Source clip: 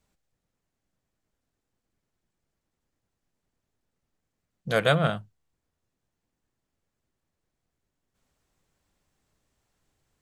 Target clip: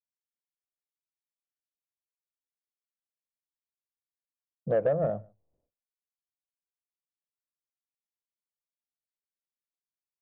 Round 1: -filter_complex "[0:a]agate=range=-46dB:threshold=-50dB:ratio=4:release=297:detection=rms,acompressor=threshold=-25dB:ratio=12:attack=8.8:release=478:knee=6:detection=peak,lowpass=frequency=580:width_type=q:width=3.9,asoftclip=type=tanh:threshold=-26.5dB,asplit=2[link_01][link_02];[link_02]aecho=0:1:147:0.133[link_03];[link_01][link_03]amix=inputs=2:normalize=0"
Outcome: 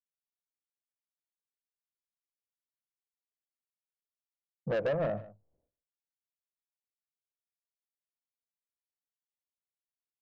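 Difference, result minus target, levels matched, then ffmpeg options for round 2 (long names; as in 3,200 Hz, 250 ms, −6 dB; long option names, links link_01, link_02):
soft clipping: distortion +11 dB; echo-to-direct +10.5 dB
-filter_complex "[0:a]agate=range=-46dB:threshold=-50dB:ratio=4:release=297:detection=rms,acompressor=threshold=-25dB:ratio=12:attack=8.8:release=478:knee=6:detection=peak,lowpass=frequency=580:width_type=q:width=3.9,asoftclip=type=tanh:threshold=-16.5dB,asplit=2[link_01][link_02];[link_02]aecho=0:1:147:0.0398[link_03];[link_01][link_03]amix=inputs=2:normalize=0"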